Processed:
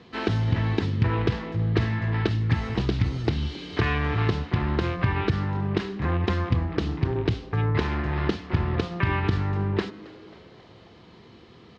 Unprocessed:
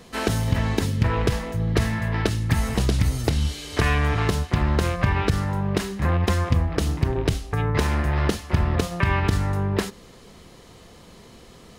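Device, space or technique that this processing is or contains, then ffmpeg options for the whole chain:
frequency-shifting delay pedal into a guitar cabinet: -filter_complex "[0:a]asplit=6[a][b][c][d][e][f];[b]adelay=270,afreqshift=110,volume=-21dB[g];[c]adelay=540,afreqshift=220,volume=-25.3dB[h];[d]adelay=810,afreqshift=330,volume=-29.6dB[i];[e]adelay=1080,afreqshift=440,volume=-33.9dB[j];[f]adelay=1350,afreqshift=550,volume=-38.2dB[k];[a][g][h][i][j][k]amix=inputs=6:normalize=0,highpass=76,equalizer=f=110:t=q:w=4:g=5,equalizer=f=340:t=q:w=4:g=5,equalizer=f=590:t=q:w=4:g=-6,lowpass=f=4.4k:w=0.5412,lowpass=f=4.4k:w=1.3066,volume=-3dB"

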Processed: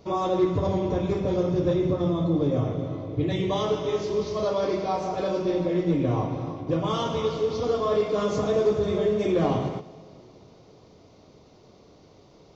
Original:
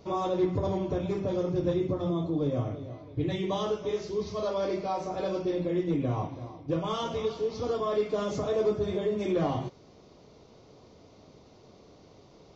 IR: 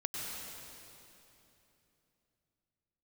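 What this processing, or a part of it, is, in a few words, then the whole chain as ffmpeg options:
keyed gated reverb: -filter_complex "[0:a]asplit=3[a][b][c];[1:a]atrim=start_sample=2205[d];[b][d]afir=irnorm=-1:irlink=0[e];[c]apad=whole_len=553880[f];[e][f]sidechaingate=range=-12dB:threshold=-47dB:ratio=16:detection=peak,volume=-3.5dB[g];[a][g]amix=inputs=2:normalize=0"

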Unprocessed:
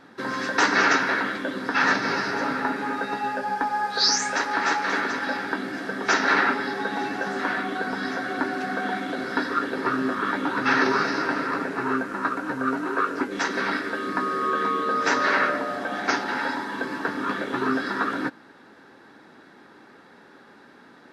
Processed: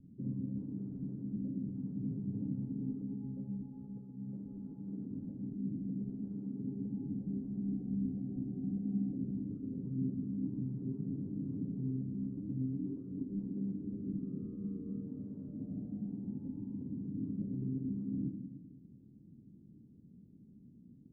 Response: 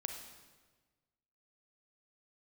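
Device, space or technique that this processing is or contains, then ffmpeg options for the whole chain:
club heard from the street: -filter_complex "[0:a]alimiter=limit=-18dB:level=0:latency=1:release=140,lowpass=f=180:w=0.5412,lowpass=f=180:w=1.3066[a];[1:a]atrim=start_sample=2205[b];[a][b]afir=irnorm=-1:irlink=0,volume=8dB"

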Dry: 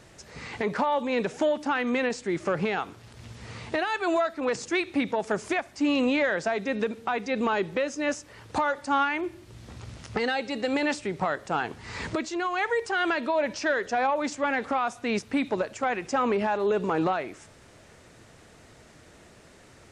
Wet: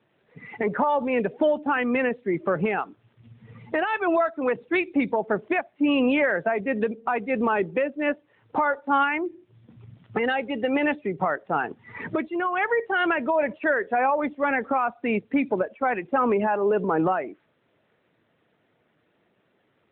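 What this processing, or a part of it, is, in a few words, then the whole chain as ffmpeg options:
mobile call with aggressive noise cancelling: -af "highpass=130,afftdn=nr=16:nf=-34,volume=3.5dB" -ar 8000 -c:a libopencore_amrnb -b:a 12200

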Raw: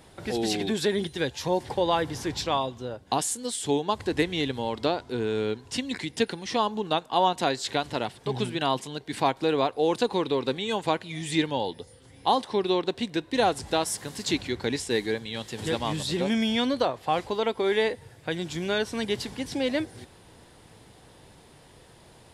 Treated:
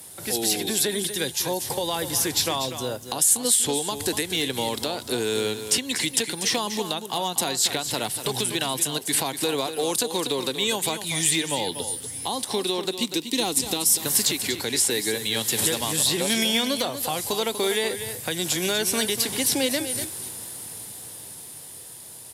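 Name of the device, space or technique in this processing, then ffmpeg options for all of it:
FM broadcast chain: -filter_complex "[0:a]asettb=1/sr,asplit=3[a][b][c];[a]atrim=end=12.934[d];[b]atrim=start=12.93:end=14.06,asetpts=PTS-STARTPTS,afade=t=in:d=0.004:c=qsin,afade=t=out:st=1.126:d=0.004:c=qsin,equalizer=f=100:t=o:w=0.67:g=-9,equalizer=f=250:t=o:w=0.67:g=5,equalizer=f=630:t=o:w=0.67:g=-11,equalizer=f=1.6k:t=o:w=0.67:g=-12,equalizer=f=10k:t=o:w=0.67:g=-5[e];[c]atrim=start=14.056[f];[d][e]acrossfade=d=0.004:c1=hsin:c2=qsin[g];[g][f]acrossfade=d=0.004:c1=qsin:c2=hsin,highpass=f=79:w=0.5412,highpass=f=79:w=1.3066,dynaudnorm=f=390:g=13:m=11.5dB,acrossover=split=310|3700[h][i][j];[h]acompressor=threshold=-33dB:ratio=4[k];[i]acompressor=threshold=-25dB:ratio=4[l];[j]acompressor=threshold=-39dB:ratio=4[m];[k][l][m]amix=inputs=3:normalize=0,aemphasis=mode=production:type=50fm,alimiter=limit=-15.5dB:level=0:latency=1:release=176,asoftclip=type=hard:threshold=-17.5dB,lowpass=f=15k:w=0.5412,lowpass=f=15k:w=1.3066,aemphasis=mode=production:type=50fm,aecho=1:1:242:0.316"

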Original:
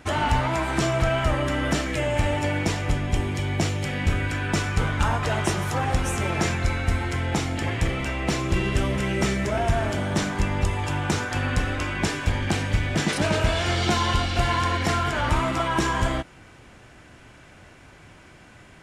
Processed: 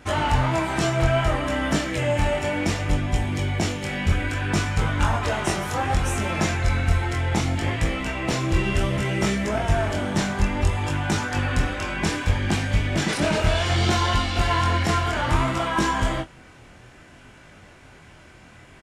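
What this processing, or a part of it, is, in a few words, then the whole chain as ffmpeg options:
double-tracked vocal: -filter_complex "[0:a]asplit=2[a][b];[b]adelay=24,volume=-12.5dB[c];[a][c]amix=inputs=2:normalize=0,flanger=delay=19:depth=6.5:speed=0.63,volume=3.5dB"

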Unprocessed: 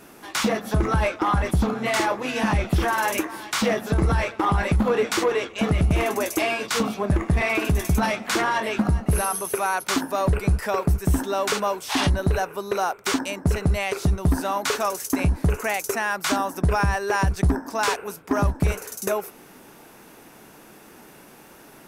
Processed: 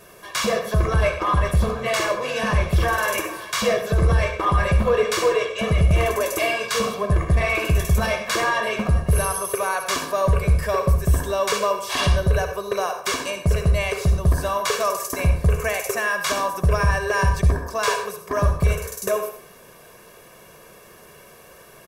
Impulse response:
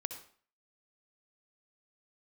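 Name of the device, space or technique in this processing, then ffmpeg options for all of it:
microphone above a desk: -filter_complex "[0:a]aecho=1:1:1.8:0.79[a];[1:a]atrim=start_sample=2205[b];[a][b]afir=irnorm=-1:irlink=0"

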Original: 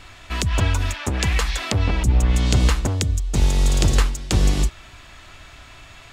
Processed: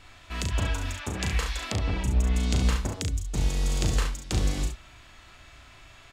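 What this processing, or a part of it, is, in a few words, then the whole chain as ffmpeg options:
slapback doubling: -filter_complex "[0:a]asplit=3[a][b][c];[b]adelay=37,volume=-5dB[d];[c]adelay=69,volume=-7.5dB[e];[a][d][e]amix=inputs=3:normalize=0,volume=-9dB"

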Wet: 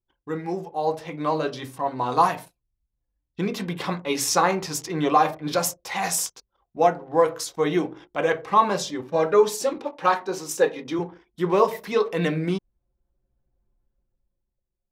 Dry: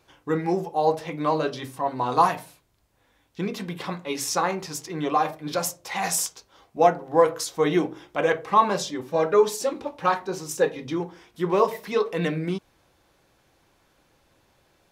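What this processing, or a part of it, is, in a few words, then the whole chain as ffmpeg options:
voice memo with heavy noise removal: -filter_complex "[0:a]asettb=1/sr,asplit=3[a][b][c];[a]atrim=end=9.784[d];[b]atrim=start=9.78:end=10.99,asetpts=PTS-STARTPTS,afade=t=in:d=0.004:c=qsin,afade=t=out:st=1.206:d=0.004:c=qsin,highpass=220[e];[c]atrim=start=10.986[f];[d][e]acrossfade=d=0.004:c1=hsin:c2=qsin[g];[g][f]acrossfade=d=0.004:c1=qsin:c2=hsin,anlmdn=0.0158,dynaudnorm=f=130:g=17:m=16.5dB,volume=-5dB"

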